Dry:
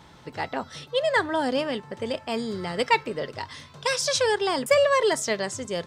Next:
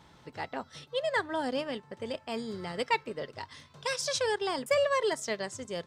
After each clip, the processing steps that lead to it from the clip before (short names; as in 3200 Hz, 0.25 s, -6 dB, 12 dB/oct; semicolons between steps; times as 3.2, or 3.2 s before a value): transient shaper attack -1 dB, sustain -5 dB; gain -6.5 dB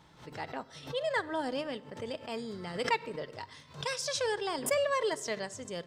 shoebox room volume 4000 m³, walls furnished, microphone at 0.53 m; backwards sustainer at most 140 dB/s; gain -2.5 dB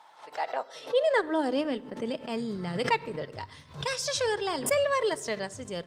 high-pass sweep 790 Hz -> 65 Hz, 0.17–3.74; gain +3.5 dB; Opus 32 kbps 48000 Hz